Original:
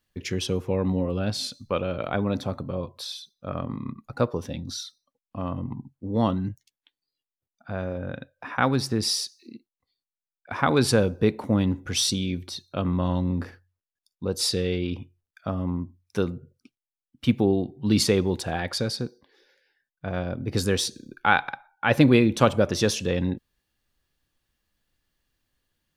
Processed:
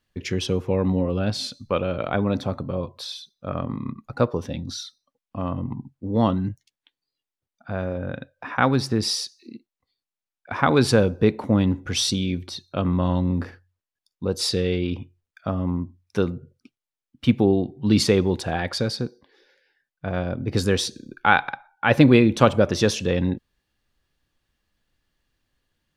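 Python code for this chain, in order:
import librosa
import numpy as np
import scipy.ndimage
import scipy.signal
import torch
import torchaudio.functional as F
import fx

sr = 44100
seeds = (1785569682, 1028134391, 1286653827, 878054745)

y = fx.high_shelf(x, sr, hz=8100.0, db=-9.5)
y = F.gain(torch.from_numpy(y), 3.0).numpy()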